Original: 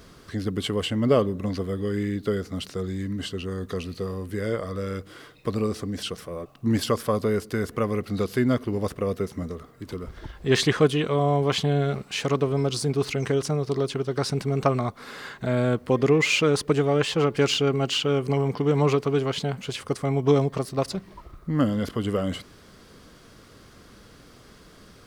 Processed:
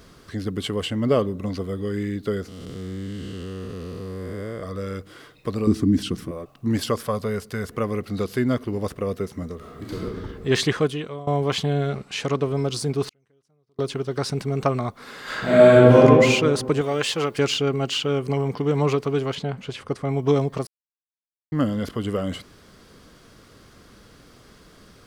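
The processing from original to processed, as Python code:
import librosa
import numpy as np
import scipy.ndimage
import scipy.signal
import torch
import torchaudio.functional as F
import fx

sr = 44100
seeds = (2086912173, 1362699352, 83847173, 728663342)

y = fx.notch(x, sr, hz=1700.0, q=12.0, at=(1.29, 1.87))
y = fx.spec_blur(y, sr, span_ms=401.0, at=(2.48, 4.63))
y = fx.low_shelf_res(y, sr, hz=400.0, db=9.0, q=3.0, at=(5.67, 6.31))
y = fx.peak_eq(y, sr, hz=320.0, db=-11.5, octaves=0.49, at=(7.07, 7.7))
y = fx.reverb_throw(y, sr, start_s=9.56, length_s=0.47, rt60_s=1.7, drr_db=-5.5)
y = fx.bessel_lowpass(y, sr, hz=9900.0, order=2, at=(11.88, 12.43))
y = fx.gate_flip(y, sr, shuts_db=-23.0, range_db=-40, at=(13.05, 13.79))
y = fx.reverb_throw(y, sr, start_s=15.23, length_s=0.78, rt60_s=1.7, drr_db=-11.5)
y = fx.tilt_eq(y, sr, slope=2.0, at=(16.81, 17.39))
y = fx.lowpass(y, sr, hz=3000.0, slope=6, at=(19.35, 20.09))
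y = fx.edit(y, sr, fx.fade_out_to(start_s=10.67, length_s=0.6, floor_db=-18.0),
    fx.silence(start_s=20.67, length_s=0.85), tone=tone)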